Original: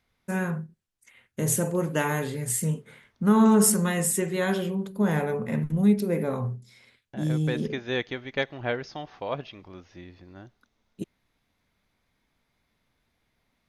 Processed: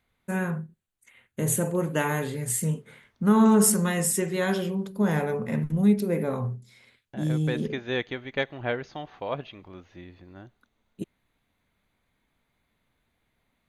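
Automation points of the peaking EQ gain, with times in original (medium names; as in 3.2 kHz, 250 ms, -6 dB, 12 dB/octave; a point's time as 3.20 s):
peaking EQ 5.3 kHz 0.29 oct
1.65 s -13 dB
2.44 s -2.5 dB
3.57 s -2.5 dB
4.11 s +5 dB
5.34 s +5 dB
6.22 s -4.5 dB
7.43 s -4.5 dB
8.15 s -14 dB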